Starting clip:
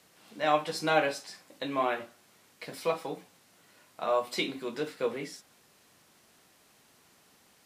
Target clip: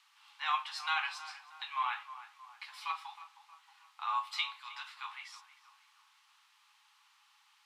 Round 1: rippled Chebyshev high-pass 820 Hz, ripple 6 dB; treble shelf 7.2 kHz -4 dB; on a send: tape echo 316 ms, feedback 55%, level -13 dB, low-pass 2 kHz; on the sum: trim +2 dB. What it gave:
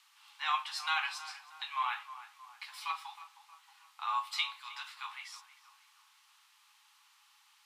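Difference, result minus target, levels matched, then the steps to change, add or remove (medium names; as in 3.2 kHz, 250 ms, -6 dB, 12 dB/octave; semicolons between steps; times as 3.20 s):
8 kHz band +4.0 dB
change: treble shelf 7.2 kHz -14 dB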